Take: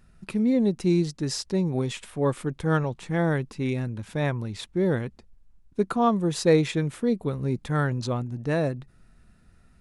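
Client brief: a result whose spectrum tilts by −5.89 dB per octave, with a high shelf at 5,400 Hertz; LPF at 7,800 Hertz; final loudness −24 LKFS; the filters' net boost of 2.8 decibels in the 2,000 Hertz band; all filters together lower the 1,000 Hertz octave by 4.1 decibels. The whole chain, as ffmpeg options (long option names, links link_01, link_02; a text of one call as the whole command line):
ffmpeg -i in.wav -af "lowpass=7800,equalizer=frequency=1000:width_type=o:gain=-8,equalizer=frequency=2000:width_type=o:gain=7.5,highshelf=frequency=5400:gain=-9,volume=2.5dB" out.wav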